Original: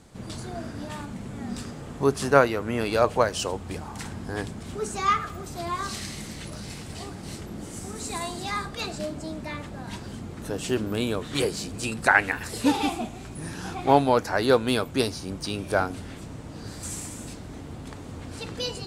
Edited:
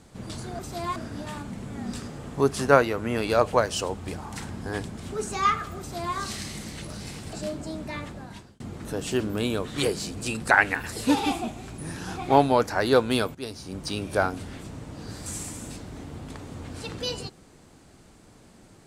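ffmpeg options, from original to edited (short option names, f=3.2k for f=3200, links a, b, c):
-filter_complex "[0:a]asplit=6[a][b][c][d][e][f];[a]atrim=end=0.592[g];[b]atrim=start=5.418:end=5.792[h];[c]atrim=start=0.588:end=6.962[i];[d]atrim=start=8.898:end=10.17,asetpts=PTS-STARTPTS,afade=t=out:st=0.742:d=0.53[j];[e]atrim=start=10.17:end=14.92,asetpts=PTS-STARTPTS,afade=t=in:d=0.004:c=hsin,afade=t=out:st=4.746:d=0.004:c=hsin:silence=0.125893[k];[f]atrim=start=14.92,asetpts=PTS-STARTPTS,afade=t=in:d=0.52:silence=0.125893[l];[g][h]acrossfade=d=0.004:c1=hsin:c2=hsin[m];[m][i]acrossfade=d=0.004:c1=hsin:c2=hsin[n];[j][k][l]concat=n=3:v=0:a=1[o];[n][o]acrossfade=d=0.004:c1=hsin:c2=hsin"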